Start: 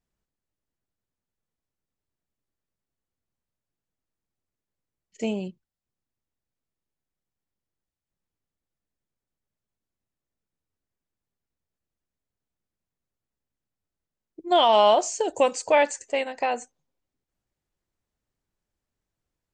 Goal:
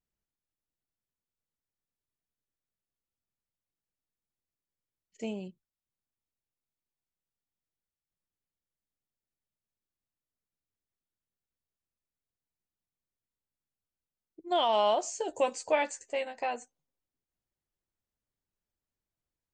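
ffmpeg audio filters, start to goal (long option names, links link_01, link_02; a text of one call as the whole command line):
ffmpeg -i in.wav -filter_complex "[0:a]asettb=1/sr,asplit=3[link_01][link_02][link_03];[link_01]atrim=end=15.034[link_04];[link_02]atrim=start=15.03:end=16.56,asetpts=PTS-STARTPTS,afade=type=in:duration=0.004:curve=qsin,afade=type=out:start_time=1.526:duration=0.004:curve=qsin,asplit=2[link_05][link_06];[link_06]adelay=13,volume=-6.5dB[link_07];[link_05][link_07]amix=inputs=2:normalize=0,atrim=end_sample=67473[link_08];[link_03]atrim=start=16.556[link_09];[link_04][link_08]acrossfade=duration=0.004:curve1=hsin:curve2=qsin[link_10];[link_10][link_09]acrossfade=duration=0.004:curve1=qsin:curve2=hsin,volume=-8.5dB" out.wav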